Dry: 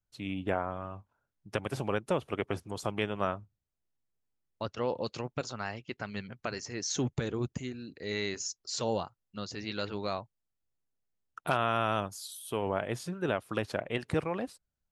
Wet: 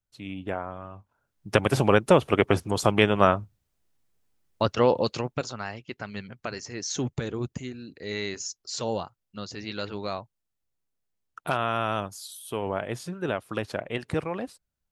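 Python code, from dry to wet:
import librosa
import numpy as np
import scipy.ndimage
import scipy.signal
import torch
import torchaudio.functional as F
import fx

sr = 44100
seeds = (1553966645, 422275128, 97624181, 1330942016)

y = fx.gain(x, sr, db=fx.line((0.94, -0.5), (1.55, 12.0), (4.81, 12.0), (5.66, 2.0)))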